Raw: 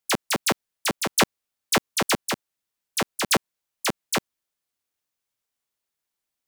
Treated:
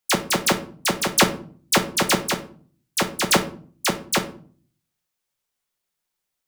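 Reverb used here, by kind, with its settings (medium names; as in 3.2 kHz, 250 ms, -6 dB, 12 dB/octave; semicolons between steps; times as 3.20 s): simulated room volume 410 m³, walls furnished, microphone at 0.96 m; trim +2.5 dB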